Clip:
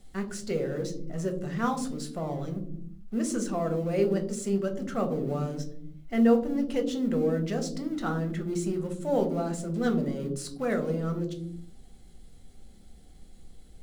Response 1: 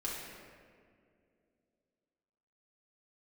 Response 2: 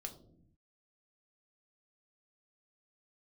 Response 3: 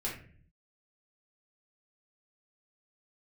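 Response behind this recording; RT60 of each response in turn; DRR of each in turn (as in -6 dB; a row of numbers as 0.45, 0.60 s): 2; 2.3, 0.65, 0.45 s; -6.0, 4.0, -5.5 dB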